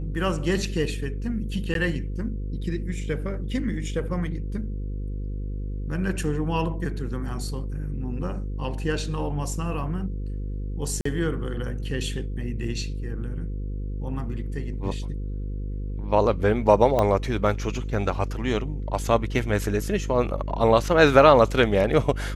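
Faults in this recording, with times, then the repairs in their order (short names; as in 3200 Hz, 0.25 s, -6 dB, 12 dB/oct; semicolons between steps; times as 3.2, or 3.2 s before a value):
buzz 50 Hz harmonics 10 -30 dBFS
1.74–1.75 gap 12 ms
11.01–11.05 gap 44 ms
16.99 pop -10 dBFS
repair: de-click; de-hum 50 Hz, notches 10; interpolate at 1.74, 12 ms; interpolate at 11.01, 44 ms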